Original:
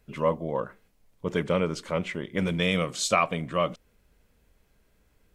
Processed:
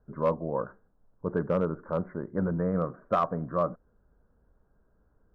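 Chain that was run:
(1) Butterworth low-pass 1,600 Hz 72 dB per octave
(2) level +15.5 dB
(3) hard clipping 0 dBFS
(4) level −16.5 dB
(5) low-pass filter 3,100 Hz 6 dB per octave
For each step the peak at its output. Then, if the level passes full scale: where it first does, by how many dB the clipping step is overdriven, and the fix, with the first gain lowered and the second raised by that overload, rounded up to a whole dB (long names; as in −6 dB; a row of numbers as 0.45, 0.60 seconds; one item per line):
−11.5, +4.0, 0.0, −16.5, −16.5 dBFS
step 2, 4.0 dB
step 2 +11.5 dB, step 4 −12.5 dB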